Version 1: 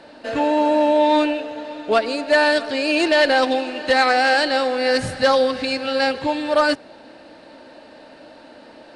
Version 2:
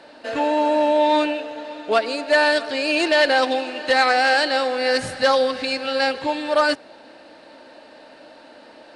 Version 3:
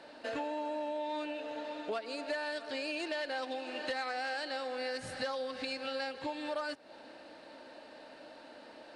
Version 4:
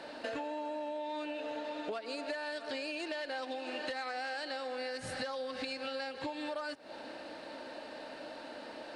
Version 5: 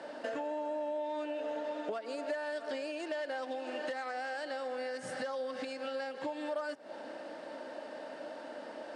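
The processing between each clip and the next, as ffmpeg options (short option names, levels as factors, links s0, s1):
-af "lowshelf=f=240:g=-9"
-af "acompressor=threshold=0.0398:ratio=6,volume=0.447"
-af "acompressor=threshold=0.00708:ratio=4,volume=2"
-af "highpass=f=150:w=0.5412,highpass=f=150:w=1.3066,equalizer=f=590:t=q:w=4:g=4,equalizer=f=2500:t=q:w=4:g=-6,equalizer=f=4100:t=q:w=4:g=-10,lowpass=f=9800:w=0.5412,lowpass=f=9800:w=1.3066"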